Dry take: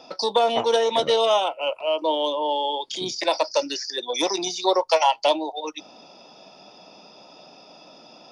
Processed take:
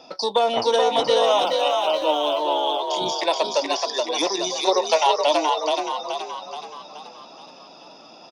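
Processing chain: 1.26–2.38 sample gate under -43.5 dBFS; frequency-shifting echo 0.426 s, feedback 50%, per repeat +45 Hz, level -3.5 dB

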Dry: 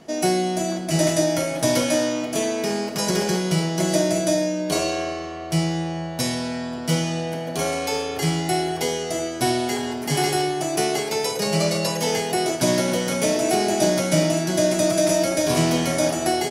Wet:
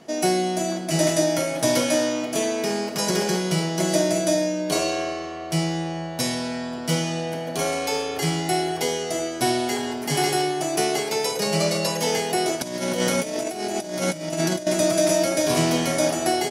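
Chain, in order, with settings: low shelf 89 Hz -11 dB; 12.62–14.67 negative-ratio compressor -25 dBFS, ratio -0.5

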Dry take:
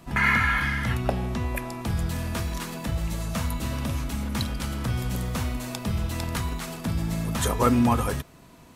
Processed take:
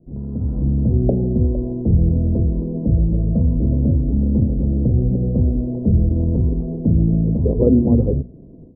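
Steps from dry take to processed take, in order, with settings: steep low-pass 510 Hz 36 dB/oct; notches 60/120/180/240 Hz; AGC gain up to 13.5 dB

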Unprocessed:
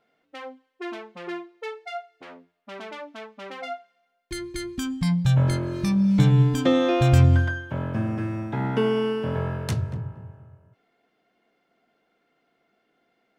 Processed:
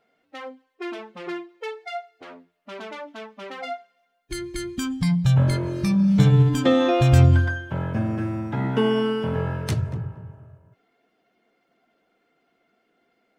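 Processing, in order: bin magnitudes rounded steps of 15 dB; gain +2 dB

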